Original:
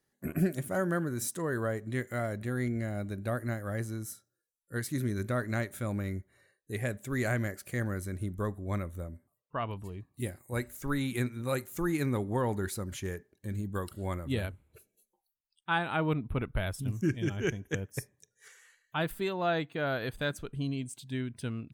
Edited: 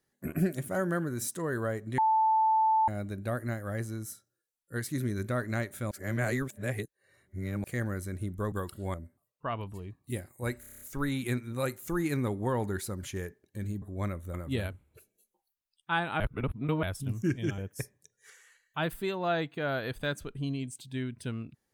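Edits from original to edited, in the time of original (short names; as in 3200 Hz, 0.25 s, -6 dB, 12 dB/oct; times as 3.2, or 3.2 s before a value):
1.98–2.88 bleep 880 Hz -21.5 dBFS
5.91–7.64 reverse
8.52–9.04 swap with 13.71–14.13
10.7 stutter 0.03 s, 8 plays
15.99–16.62 reverse
17.37–17.76 cut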